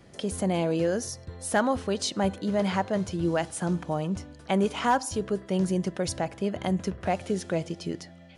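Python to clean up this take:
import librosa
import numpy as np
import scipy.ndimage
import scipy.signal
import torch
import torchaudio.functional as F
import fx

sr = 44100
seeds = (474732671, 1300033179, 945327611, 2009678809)

y = fx.fix_declip(x, sr, threshold_db=-14.0)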